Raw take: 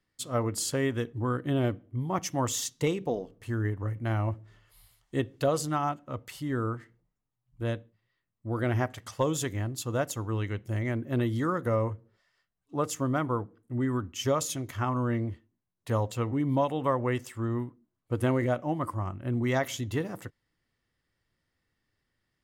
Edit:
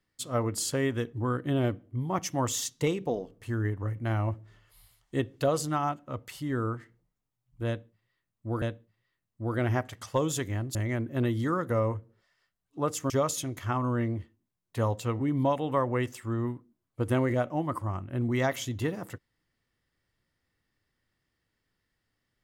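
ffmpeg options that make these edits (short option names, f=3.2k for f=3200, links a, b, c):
-filter_complex "[0:a]asplit=4[a][b][c][d];[a]atrim=end=8.622[e];[b]atrim=start=7.668:end=9.802[f];[c]atrim=start=10.708:end=13.062[g];[d]atrim=start=14.218[h];[e][f]acrossfade=d=0.004:c1=hsin:c2=hsin[i];[i][g]acrossfade=d=0.004:c1=hsin:c2=hsin[j];[j][h]acrossfade=d=0.004:c1=hsin:c2=hsin"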